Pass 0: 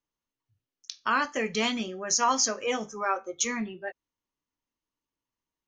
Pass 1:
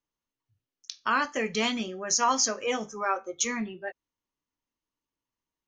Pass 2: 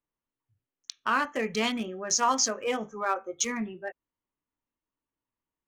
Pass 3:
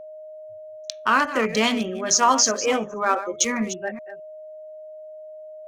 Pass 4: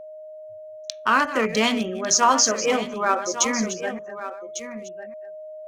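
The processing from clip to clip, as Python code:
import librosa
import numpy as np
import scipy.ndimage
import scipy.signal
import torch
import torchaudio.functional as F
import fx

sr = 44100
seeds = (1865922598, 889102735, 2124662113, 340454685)

y1 = x
y2 = fx.wiener(y1, sr, points=9)
y3 = fx.reverse_delay(y2, sr, ms=210, wet_db=-12.0)
y3 = y3 + 10.0 ** (-44.0 / 20.0) * np.sin(2.0 * np.pi * 620.0 * np.arange(len(y3)) / sr)
y3 = F.gain(torch.from_numpy(y3), 7.0).numpy()
y4 = y3 + 10.0 ** (-12.5 / 20.0) * np.pad(y3, (int(1150 * sr / 1000.0), 0))[:len(y3)]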